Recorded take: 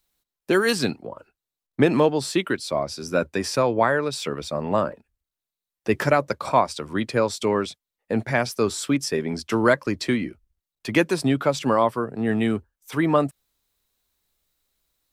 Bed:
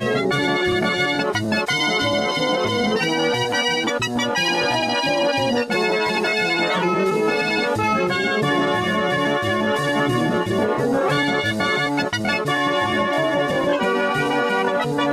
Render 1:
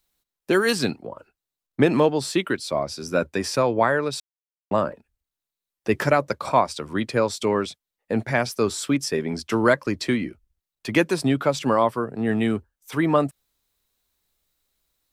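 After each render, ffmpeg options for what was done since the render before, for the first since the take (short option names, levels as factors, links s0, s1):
-filter_complex "[0:a]asplit=3[s0][s1][s2];[s0]atrim=end=4.2,asetpts=PTS-STARTPTS,afade=t=out:st=4.196:d=0.004:c=hsin[s3];[s1]atrim=start=4.2:end=4.71,asetpts=PTS-STARTPTS,volume=0[s4];[s2]atrim=start=4.71,asetpts=PTS-STARTPTS,afade=t=in:d=0.004:c=hsin[s5];[s3][s4][s5]concat=n=3:v=0:a=1"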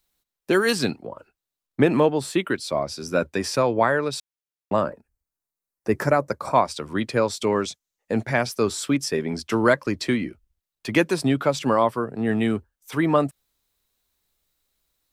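-filter_complex "[0:a]asettb=1/sr,asplit=3[s0][s1][s2];[s0]atrim=end=1.824[s3];[s1]atrim=start=1.82:end=2.52,asetpts=PTS-STARTPTS,afade=t=in:d=0.004:c=qsin,afade=t=out:st=0.696:d=0.004:c=qsin,equalizer=f=5100:t=o:w=0.77:g=-7.5[s4];[s2]atrim=start=2.516[s5];[s3][s4]acrossfade=d=0.004:c1=hsin:c2=qsin[s6];[s6][s5]acrossfade=d=0.004:c1=qsin:c2=hsin,asettb=1/sr,asplit=3[s7][s8][s9];[s7]atrim=end=4.904[s10];[s8]atrim=start=4.9:end=6.55,asetpts=PTS-STARTPTS,afade=t=in:d=0.004:c=qsin,afade=t=out:st=1.646:d=0.004:c=qsin,equalizer=f=3200:t=o:w=0.89:g=-12.5[s11];[s9]atrim=start=6.546[s12];[s10][s11]acrossfade=d=0.004:c1=hsin:c2=qsin[s13];[s13][s12]acrossfade=d=0.004:c1=qsin:c2=hsin,asettb=1/sr,asplit=3[s14][s15][s16];[s14]atrim=end=7.524[s17];[s15]atrim=start=7.52:end=8.23,asetpts=PTS-STARTPTS,afade=t=in:d=0.004:c=qsin,afade=t=out:st=0.706:d=0.004:c=qsin,equalizer=f=6500:t=o:w=0.51:g=9.5[s18];[s16]atrim=start=8.226[s19];[s17][s18]acrossfade=d=0.004:c1=hsin:c2=qsin[s20];[s20][s19]acrossfade=d=0.004:c1=qsin:c2=hsin"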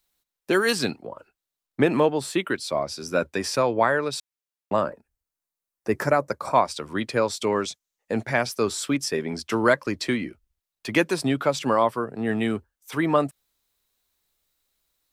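-af "lowshelf=f=320:g=-4.5"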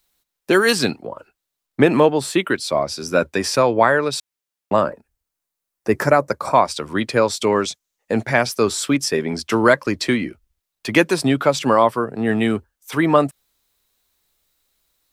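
-af "volume=2,alimiter=limit=0.891:level=0:latency=1"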